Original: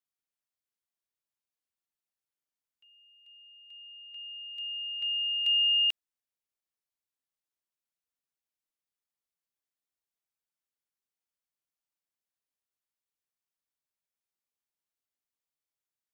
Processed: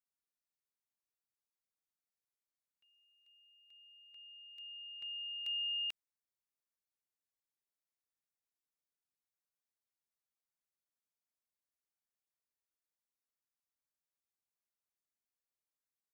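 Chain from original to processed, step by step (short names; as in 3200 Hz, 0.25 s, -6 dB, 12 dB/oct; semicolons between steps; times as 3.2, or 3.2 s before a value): bell 3000 Hz -9 dB 0.35 oct; gain -5.5 dB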